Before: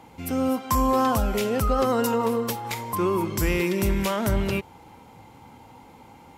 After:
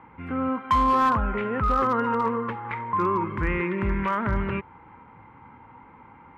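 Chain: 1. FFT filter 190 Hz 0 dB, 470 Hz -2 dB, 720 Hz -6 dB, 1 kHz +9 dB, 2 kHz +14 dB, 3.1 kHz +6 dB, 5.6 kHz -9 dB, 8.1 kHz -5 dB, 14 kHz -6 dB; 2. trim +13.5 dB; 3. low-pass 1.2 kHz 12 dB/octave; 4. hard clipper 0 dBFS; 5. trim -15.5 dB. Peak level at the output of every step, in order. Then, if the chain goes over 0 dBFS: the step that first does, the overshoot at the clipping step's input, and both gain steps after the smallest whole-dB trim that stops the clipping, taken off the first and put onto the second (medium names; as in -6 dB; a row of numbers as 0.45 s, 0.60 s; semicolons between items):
-5.5 dBFS, +8.0 dBFS, +5.5 dBFS, 0.0 dBFS, -15.5 dBFS; step 2, 5.5 dB; step 2 +7.5 dB, step 5 -9.5 dB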